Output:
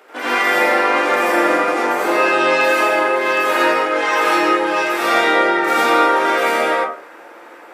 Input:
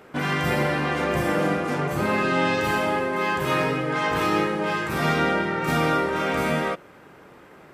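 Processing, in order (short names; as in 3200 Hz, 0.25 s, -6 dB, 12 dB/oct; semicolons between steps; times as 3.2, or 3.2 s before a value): Bessel high-pass 480 Hz, order 8; reverb RT60 0.50 s, pre-delay 77 ms, DRR -7.5 dB; gain +3 dB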